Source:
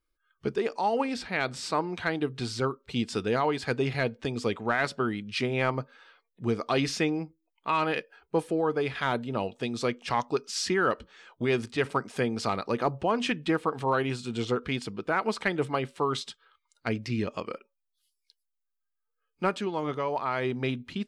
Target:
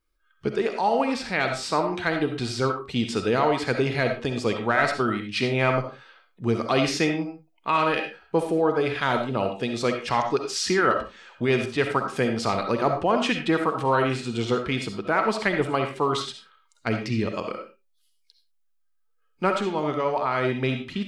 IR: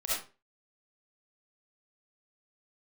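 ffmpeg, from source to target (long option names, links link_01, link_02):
-filter_complex "[0:a]asplit=2[link_01][link_02];[1:a]atrim=start_sample=2205,afade=type=out:start_time=0.25:duration=0.01,atrim=end_sample=11466,highshelf=frequency=8600:gain=-7[link_03];[link_02][link_03]afir=irnorm=-1:irlink=0,volume=-7.5dB[link_04];[link_01][link_04]amix=inputs=2:normalize=0,volume=1.5dB"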